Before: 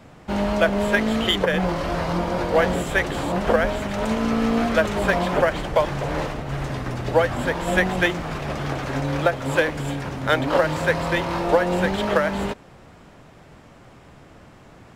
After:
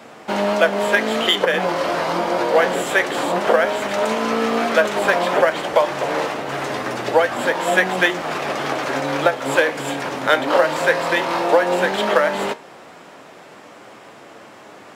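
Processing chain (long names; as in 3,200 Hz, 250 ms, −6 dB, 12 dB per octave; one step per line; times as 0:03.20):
high-pass filter 340 Hz 12 dB per octave
in parallel at +1.5 dB: downward compressor, threshold −30 dBFS, peak gain reduction 16 dB
on the sum: flanger 0.14 Hz, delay 8.6 ms, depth 8.8 ms, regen +74%
level +6.5 dB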